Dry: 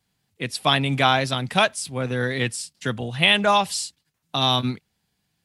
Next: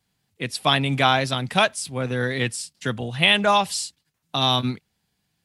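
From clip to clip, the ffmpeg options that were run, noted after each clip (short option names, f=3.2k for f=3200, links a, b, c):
-af anull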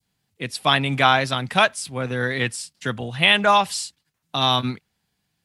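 -af "adynamicequalizer=threshold=0.0316:dfrequency=1400:dqfactor=0.73:tfrequency=1400:tqfactor=0.73:attack=5:release=100:ratio=0.375:range=2.5:mode=boostabove:tftype=bell,volume=-1dB"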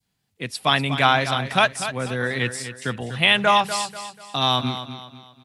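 -af "aecho=1:1:244|488|732|976:0.282|0.107|0.0407|0.0155,volume=-1dB"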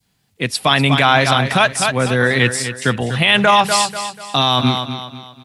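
-af "alimiter=level_in=11dB:limit=-1dB:release=50:level=0:latency=1,volume=-1dB"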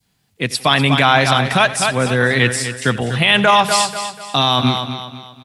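-af "aecho=1:1:90|180|270|360:0.133|0.0573|0.0247|0.0106"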